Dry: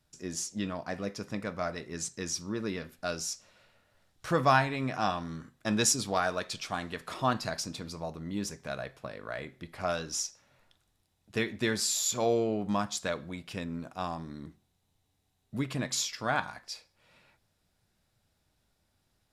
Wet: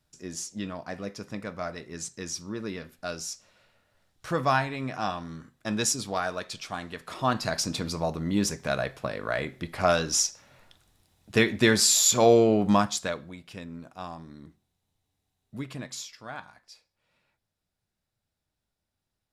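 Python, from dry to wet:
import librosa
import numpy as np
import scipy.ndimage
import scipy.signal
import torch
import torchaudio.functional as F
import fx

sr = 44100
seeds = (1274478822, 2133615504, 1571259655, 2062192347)

y = fx.gain(x, sr, db=fx.line((7.06, -0.5), (7.76, 9.0), (12.74, 9.0), (13.36, -3.5), (15.7, -3.5), (16.24, -10.0)))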